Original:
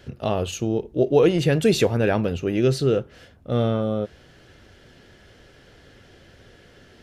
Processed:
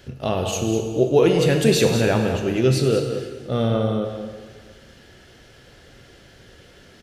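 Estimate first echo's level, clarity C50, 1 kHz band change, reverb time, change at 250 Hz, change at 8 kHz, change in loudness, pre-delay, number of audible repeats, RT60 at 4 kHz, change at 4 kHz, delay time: −9.0 dB, 4.5 dB, +2.0 dB, 1.7 s, +1.5 dB, +6.5 dB, +1.5 dB, 5 ms, 1, 1.6 s, +4.0 dB, 198 ms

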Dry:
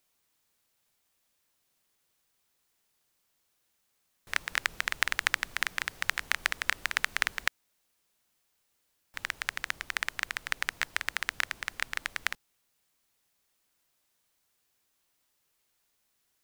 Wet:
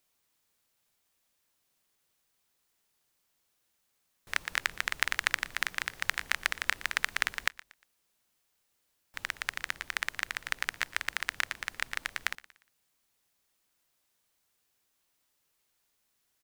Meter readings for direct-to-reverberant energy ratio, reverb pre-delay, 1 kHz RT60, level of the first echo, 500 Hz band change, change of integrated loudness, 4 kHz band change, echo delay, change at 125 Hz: no reverb audible, no reverb audible, no reverb audible, −19.0 dB, −1.0 dB, −1.0 dB, −1.0 dB, 118 ms, −1.0 dB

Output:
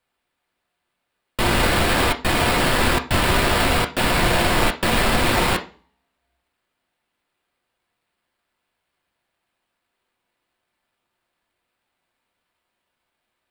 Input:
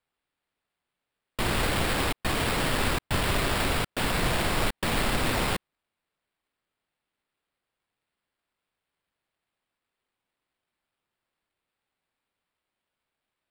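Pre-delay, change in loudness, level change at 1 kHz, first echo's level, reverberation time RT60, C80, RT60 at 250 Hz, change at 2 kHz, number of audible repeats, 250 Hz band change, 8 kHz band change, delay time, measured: 3 ms, +8.0 dB, +9.0 dB, no echo audible, 0.40 s, 19.5 dB, 0.50 s, +8.5 dB, no echo audible, +8.0 dB, +6.5 dB, no echo audible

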